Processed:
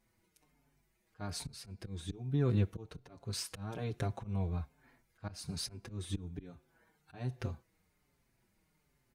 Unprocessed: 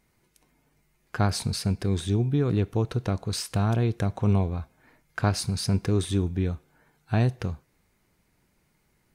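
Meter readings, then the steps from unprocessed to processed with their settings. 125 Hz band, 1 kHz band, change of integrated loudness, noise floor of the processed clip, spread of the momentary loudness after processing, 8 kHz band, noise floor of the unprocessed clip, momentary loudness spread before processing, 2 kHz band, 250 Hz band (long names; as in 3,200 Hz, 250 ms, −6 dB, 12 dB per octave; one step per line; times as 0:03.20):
−12.5 dB, −15.0 dB, −12.5 dB, −77 dBFS, 16 LU, −10.0 dB, −70 dBFS, 11 LU, −14.5 dB, −13.5 dB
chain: volume swells 335 ms
barber-pole flanger 5.5 ms −1.2 Hz
level −4 dB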